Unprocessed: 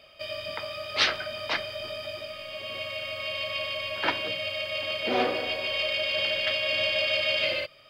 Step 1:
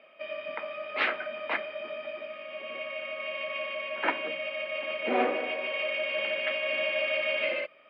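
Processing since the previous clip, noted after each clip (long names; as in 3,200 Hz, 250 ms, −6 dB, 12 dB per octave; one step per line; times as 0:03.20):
Chebyshev band-pass filter 220–2,400 Hz, order 3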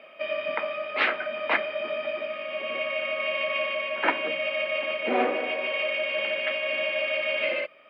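speech leveller within 3 dB 0.5 s
level +4.5 dB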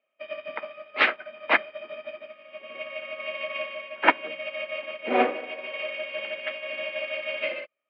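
expander for the loud parts 2.5 to 1, over −44 dBFS
level +6.5 dB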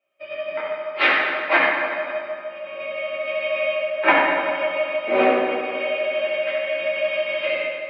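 convolution reverb RT60 2.2 s, pre-delay 4 ms, DRR −9.5 dB
level −3.5 dB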